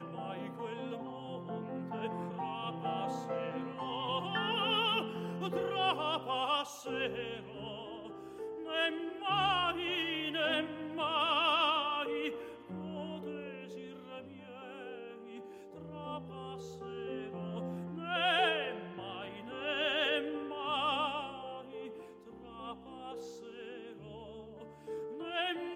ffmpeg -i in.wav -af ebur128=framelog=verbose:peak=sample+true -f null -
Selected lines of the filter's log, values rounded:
Integrated loudness:
  I:         -35.6 LUFS
  Threshold: -46.3 LUFS
Loudness range:
  LRA:        13.6 LU
  Threshold: -56.0 LUFS
  LRA low:   -46.2 LUFS
  LRA high:  -32.6 LUFS
Sample peak:
  Peak:      -18.6 dBFS
True peak:
  Peak:      -18.6 dBFS